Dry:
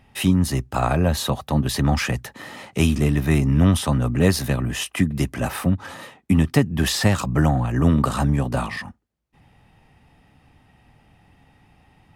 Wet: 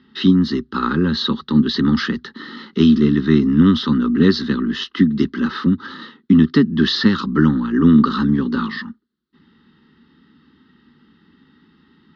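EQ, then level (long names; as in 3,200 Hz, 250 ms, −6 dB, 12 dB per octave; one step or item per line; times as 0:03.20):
loudspeaker in its box 140–4,400 Hz, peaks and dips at 150 Hz +7 dB, 230 Hz +8 dB, 380 Hz +6 dB, 800 Hz +6 dB, 1,300 Hz +4 dB, 4,100 Hz +4 dB
phaser with its sweep stopped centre 300 Hz, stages 4
phaser with its sweep stopped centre 2,400 Hz, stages 6
+6.5 dB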